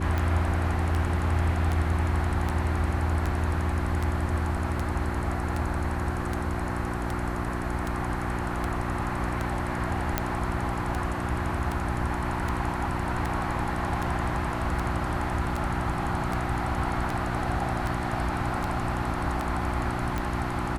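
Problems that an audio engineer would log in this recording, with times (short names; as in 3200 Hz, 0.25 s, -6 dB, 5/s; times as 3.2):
hum 60 Hz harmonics 6 -32 dBFS
tick 78 rpm -16 dBFS
10.18 pop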